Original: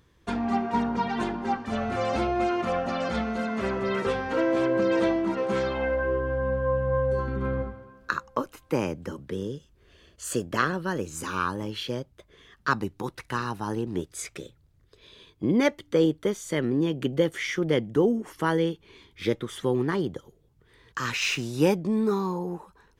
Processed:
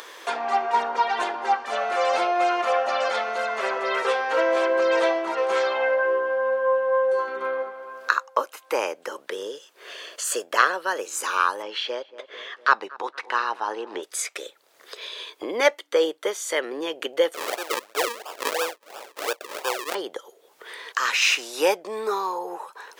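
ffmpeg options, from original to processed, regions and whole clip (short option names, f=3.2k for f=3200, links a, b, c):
-filter_complex "[0:a]asettb=1/sr,asplit=3[a][b][c];[a]atrim=end=11.624[d];[b]atrim=start=11.62:end=14.03,asetpts=PTS-STARTPTS,afade=t=in:d=0.004:c=qsin,afade=t=out:st=2.406:d=0.004:c=qsin,lowpass=4.1k,asplit=2[e][f];[f]adelay=231,lowpass=f=1.3k:p=1,volume=-20dB,asplit=2[g][h];[h]adelay=231,lowpass=f=1.3k:p=1,volume=0.47,asplit=2[i][j];[j]adelay=231,lowpass=f=1.3k:p=1,volume=0.47,asplit=2[k][l];[l]adelay=231,lowpass=f=1.3k:p=1,volume=0.47[m];[e][g][i][k][m]amix=inputs=5:normalize=0,atrim=end_sample=106281[n];[c]atrim=start=14.026[o];[d][n]acrossfade=d=0.004:c1=hsin:c2=qsin[p];[p][o]acrossfade=d=0.004:c1=qsin:c2=hsin,asettb=1/sr,asplit=3[q][r][s];[q]atrim=end=17.344[t];[r]atrim=start=17.34:end=19.95,asetpts=PTS-STARTPTS,afade=t=in:d=0.004:c=qsin,afade=t=out:st=2.606:d=0.004:c=qsin,highpass=540,highshelf=f=3.9k:g=6.5,acrusher=samples=42:mix=1:aa=0.000001:lfo=1:lforange=42:lforate=2.9[u];[s]atrim=start=19.946[v];[t][u]acrossfade=d=0.004:c1=hsin:c2=qsin[w];[w][v]acrossfade=d=0.004:c1=qsin:c2=hsin,highpass=f=510:w=0.5412,highpass=f=510:w=1.3066,acompressor=mode=upward:threshold=-33dB:ratio=2.5,volume=7dB"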